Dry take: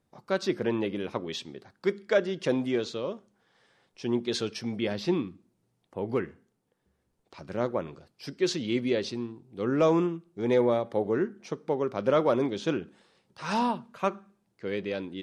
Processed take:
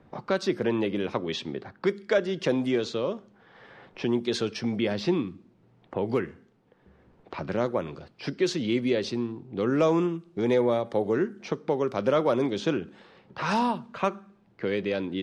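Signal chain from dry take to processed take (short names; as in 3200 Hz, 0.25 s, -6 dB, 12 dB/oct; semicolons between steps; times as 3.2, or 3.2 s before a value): in parallel at +2 dB: compressor, threshold -39 dBFS, peak gain reduction 19 dB; on the sum: low-pass opened by the level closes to 2200 Hz, open at -22 dBFS; three-band squash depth 40%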